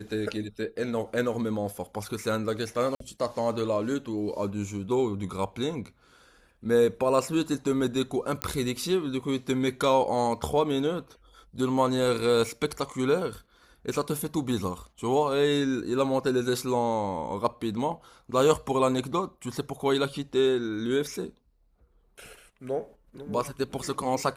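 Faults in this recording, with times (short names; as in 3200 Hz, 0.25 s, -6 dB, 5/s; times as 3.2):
2.95–3 gap 53 ms
8.42 pop -11 dBFS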